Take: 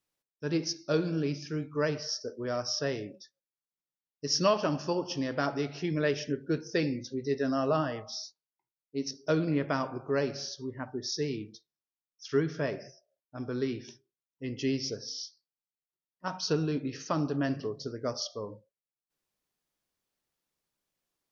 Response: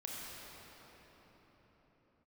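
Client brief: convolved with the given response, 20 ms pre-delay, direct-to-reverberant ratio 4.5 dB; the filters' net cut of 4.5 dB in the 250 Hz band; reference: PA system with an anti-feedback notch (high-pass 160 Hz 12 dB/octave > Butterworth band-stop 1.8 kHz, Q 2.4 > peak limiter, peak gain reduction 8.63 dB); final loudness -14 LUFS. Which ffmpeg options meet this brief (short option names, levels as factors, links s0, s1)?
-filter_complex "[0:a]equalizer=f=250:t=o:g=-5,asplit=2[s0][s1];[1:a]atrim=start_sample=2205,adelay=20[s2];[s1][s2]afir=irnorm=-1:irlink=0,volume=0.562[s3];[s0][s3]amix=inputs=2:normalize=0,highpass=160,asuperstop=centerf=1800:order=8:qfactor=2.4,volume=10.6,alimiter=limit=0.891:level=0:latency=1"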